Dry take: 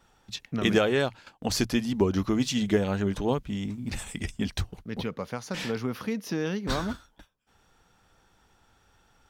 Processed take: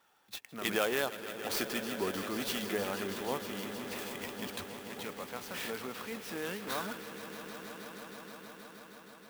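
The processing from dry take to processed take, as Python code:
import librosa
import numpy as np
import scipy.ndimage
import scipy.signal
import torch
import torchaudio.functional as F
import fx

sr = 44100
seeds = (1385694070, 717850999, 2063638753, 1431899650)

p1 = fx.weighting(x, sr, curve='A')
p2 = fx.transient(p1, sr, attack_db=-4, sustain_db=2)
p3 = p2 + fx.echo_swell(p2, sr, ms=158, loudest=5, wet_db=-14, dry=0)
p4 = fx.clock_jitter(p3, sr, seeds[0], jitter_ms=0.033)
y = F.gain(torch.from_numpy(p4), -4.0).numpy()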